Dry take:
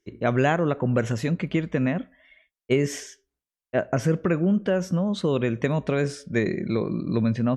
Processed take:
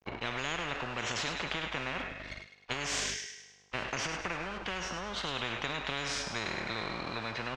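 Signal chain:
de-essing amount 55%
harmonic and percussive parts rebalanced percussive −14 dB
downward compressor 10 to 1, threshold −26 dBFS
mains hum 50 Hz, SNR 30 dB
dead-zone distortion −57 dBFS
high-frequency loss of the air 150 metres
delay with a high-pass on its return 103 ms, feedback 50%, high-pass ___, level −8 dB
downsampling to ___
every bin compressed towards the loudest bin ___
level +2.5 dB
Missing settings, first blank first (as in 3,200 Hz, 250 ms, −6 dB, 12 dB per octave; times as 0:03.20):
2,200 Hz, 32,000 Hz, 10 to 1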